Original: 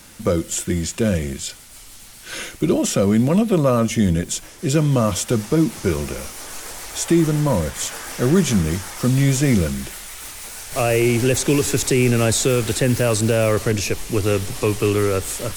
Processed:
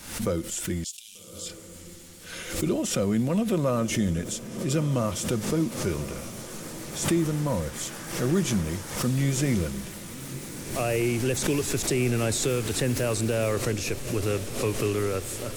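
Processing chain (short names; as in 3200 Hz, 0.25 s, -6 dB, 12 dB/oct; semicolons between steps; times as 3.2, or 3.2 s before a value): 0.84–1.46 steep high-pass 2900 Hz 48 dB/oct; on a send: diffused feedback echo 1.202 s, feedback 71%, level -15 dB; on the sum: backwards sustainer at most 81 dB/s; gain -8.5 dB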